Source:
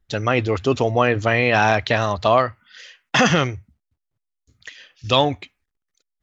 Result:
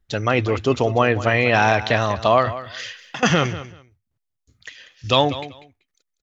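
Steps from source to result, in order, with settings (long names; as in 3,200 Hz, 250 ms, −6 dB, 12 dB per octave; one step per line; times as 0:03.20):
0:02.47–0:03.23: compressor whose output falls as the input rises −24 dBFS, ratio −0.5
repeating echo 192 ms, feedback 18%, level −14.5 dB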